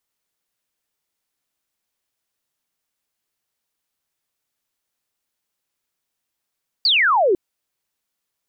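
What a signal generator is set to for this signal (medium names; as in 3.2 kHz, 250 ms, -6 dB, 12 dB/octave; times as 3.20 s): laser zap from 4.8 kHz, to 340 Hz, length 0.50 s sine, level -13 dB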